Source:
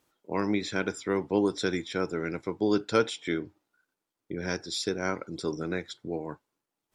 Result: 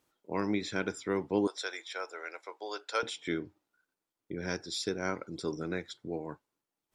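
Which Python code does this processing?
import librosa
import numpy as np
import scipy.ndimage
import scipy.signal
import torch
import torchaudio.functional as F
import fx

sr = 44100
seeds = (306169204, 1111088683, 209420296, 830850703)

y = fx.highpass(x, sr, hz=570.0, slope=24, at=(1.47, 3.03))
y = y * 10.0 ** (-3.5 / 20.0)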